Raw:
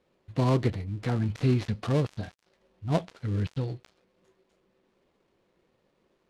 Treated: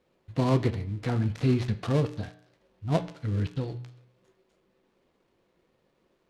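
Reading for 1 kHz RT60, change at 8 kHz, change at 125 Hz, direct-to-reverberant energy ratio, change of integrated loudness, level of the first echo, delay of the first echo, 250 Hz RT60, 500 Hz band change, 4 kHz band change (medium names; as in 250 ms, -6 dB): 0.65 s, no reading, 0.0 dB, 11.0 dB, +0.5 dB, no echo, no echo, 0.65 s, +0.5 dB, +0.5 dB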